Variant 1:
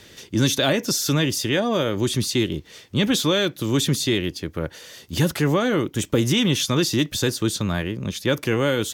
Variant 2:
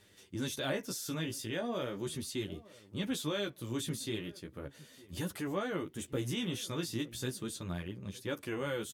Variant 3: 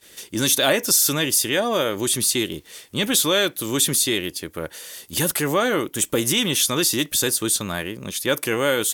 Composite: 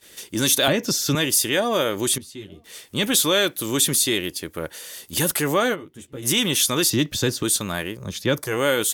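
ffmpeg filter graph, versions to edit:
-filter_complex "[0:a]asplit=3[s0][s1][s2];[1:a]asplit=2[s3][s4];[2:a]asplit=6[s5][s6][s7][s8][s9][s10];[s5]atrim=end=0.682[s11];[s0]atrim=start=0.678:end=1.152[s12];[s6]atrim=start=1.148:end=2.182[s13];[s3]atrim=start=2.178:end=2.642[s14];[s7]atrim=start=2.638:end=5.76[s15];[s4]atrim=start=5.72:end=6.26[s16];[s8]atrim=start=6.22:end=6.902[s17];[s1]atrim=start=6.898:end=7.432[s18];[s9]atrim=start=7.428:end=8.16[s19];[s2]atrim=start=7.92:end=8.58[s20];[s10]atrim=start=8.34[s21];[s11][s12]acrossfade=d=0.004:c1=hsin:c2=hsin[s22];[s22][s13]acrossfade=d=0.004:c1=hsin:c2=hsin[s23];[s23][s14]acrossfade=d=0.004:c1=hsin:c2=hsin[s24];[s24][s15]acrossfade=d=0.004:c1=hsin:c2=hsin[s25];[s25][s16]acrossfade=d=0.04:c1=tri:c2=tri[s26];[s26][s17]acrossfade=d=0.04:c1=tri:c2=tri[s27];[s27][s18]acrossfade=d=0.004:c1=hsin:c2=hsin[s28];[s28][s19]acrossfade=d=0.004:c1=hsin:c2=hsin[s29];[s29][s20]acrossfade=d=0.24:c1=tri:c2=tri[s30];[s30][s21]acrossfade=d=0.24:c1=tri:c2=tri"

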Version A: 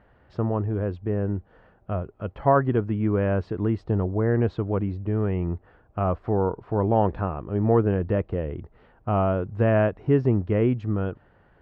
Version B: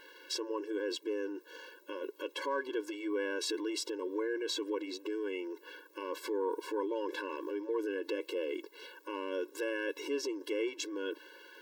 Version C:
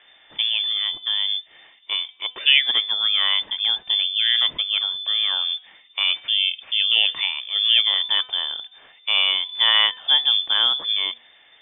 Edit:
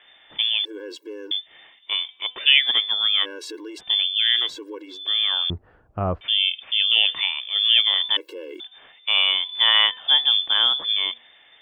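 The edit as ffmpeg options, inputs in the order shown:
-filter_complex "[1:a]asplit=4[s0][s1][s2][s3];[2:a]asplit=6[s4][s5][s6][s7][s8][s9];[s4]atrim=end=0.652[s10];[s0]atrim=start=0.648:end=1.312[s11];[s5]atrim=start=1.308:end=3.26[s12];[s1]atrim=start=3.22:end=3.81[s13];[s6]atrim=start=3.77:end=4.58[s14];[s2]atrim=start=4.34:end=5.12[s15];[s7]atrim=start=4.88:end=5.502[s16];[0:a]atrim=start=5.498:end=6.212[s17];[s8]atrim=start=6.208:end=8.172[s18];[s3]atrim=start=8.168:end=8.602[s19];[s9]atrim=start=8.598[s20];[s10][s11]acrossfade=d=0.004:c1=hsin:c2=hsin[s21];[s21][s12]acrossfade=d=0.004:c1=hsin:c2=hsin[s22];[s22][s13]acrossfade=d=0.04:c1=tri:c2=tri[s23];[s23][s14]acrossfade=d=0.04:c1=tri:c2=tri[s24];[s24][s15]acrossfade=d=0.24:c1=tri:c2=tri[s25];[s25][s16]acrossfade=d=0.24:c1=tri:c2=tri[s26];[s26][s17]acrossfade=d=0.004:c1=hsin:c2=hsin[s27];[s27][s18]acrossfade=d=0.004:c1=hsin:c2=hsin[s28];[s28][s19]acrossfade=d=0.004:c1=hsin:c2=hsin[s29];[s29][s20]acrossfade=d=0.004:c1=hsin:c2=hsin"

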